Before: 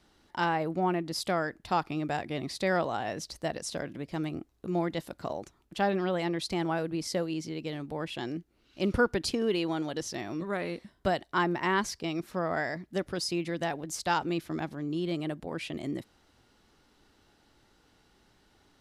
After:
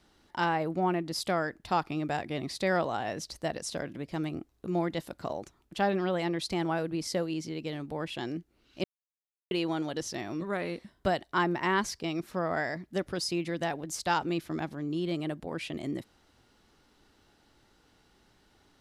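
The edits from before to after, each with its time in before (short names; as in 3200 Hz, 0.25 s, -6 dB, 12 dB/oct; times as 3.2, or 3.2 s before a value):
8.84–9.51 mute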